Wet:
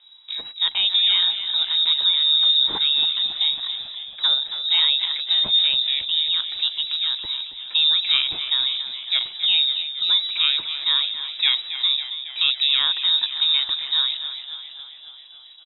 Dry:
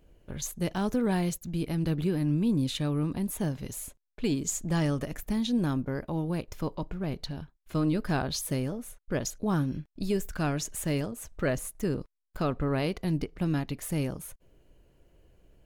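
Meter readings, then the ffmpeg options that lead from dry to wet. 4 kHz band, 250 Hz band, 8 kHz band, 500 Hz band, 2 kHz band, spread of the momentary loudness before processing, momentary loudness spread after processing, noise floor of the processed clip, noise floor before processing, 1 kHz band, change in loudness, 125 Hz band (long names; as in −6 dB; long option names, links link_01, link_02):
+28.5 dB, below −20 dB, below −40 dB, below −15 dB, +9.5 dB, 9 LU, 11 LU, −44 dBFS, −75 dBFS, −1.0 dB, +12.5 dB, below −25 dB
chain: -filter_complex "[0:a]lowpass=frequency=3300:width_type=q:width=0.5098,lowpass=frequency=3300:width_type=q:width=0.6013,lowpass=frequency=3300:width_type=q:width=0.9,lowpass=frequency=3300:width_type=q:width=2.563,afreqshift=-3900,asplit=9[link_01][link_02][link_03][link_04][link_05][link_06][link_07][link_08][link_09];[link_02]adelay=275,afreqshift=-51,volume=-11dB[link_10];[link_03]adelay=550,afreqshift=-102,volume=-14.9dB[link_11];[link_04]adelay=825,afreqshift=-153,volume=-18.8dB[link_12];[link_05]adelay=1100,afreqshift=-204,volume=-22.6dB[link_13];[link_06]adelay=1375,afreqshift=-255,volume=-26.5dB[link_14];[link_07]adelay=1650,afreqshift=-306,volume=-30.4dB[link_15];[link_08]adelay=1925,afreqshift=-357,volume=-34.3dB[link_16];[link_09]adelay=2200,afreqshift=-408,volume=-38.1dB[link_17];[link_01][link_10][link_11][link_12][link_13][link_14][link_15][link_16][link_17]amix=inputs=9:normalize=0,volume=8dB"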